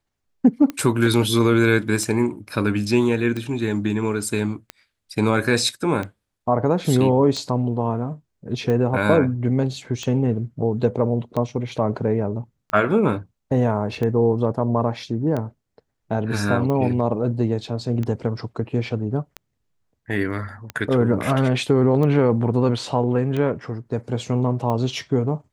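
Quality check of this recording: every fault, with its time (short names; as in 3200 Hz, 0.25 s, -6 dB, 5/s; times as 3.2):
tick 45 rpm -15 dBFS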